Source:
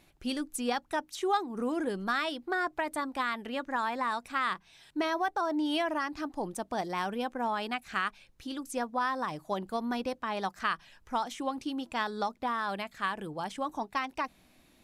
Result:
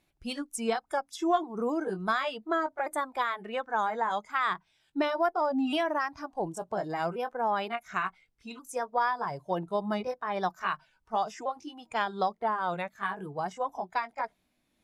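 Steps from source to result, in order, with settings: repeated pitch sweeps -2.5 st, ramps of 1.432 s; spectral noise reduction 12 dB; added harmonics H 2 -30 dB, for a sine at -18 dBFS; dynamic EQ 620 Hz, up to +3 dB, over -42 dBFS, Q 0.77; gain +1.5 dB

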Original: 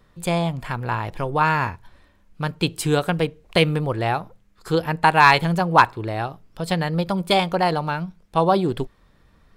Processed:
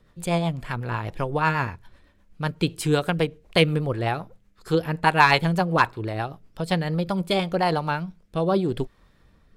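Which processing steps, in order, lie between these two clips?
rotary speaker horn 8 Hz, later 0.85 Hz, at 6.5

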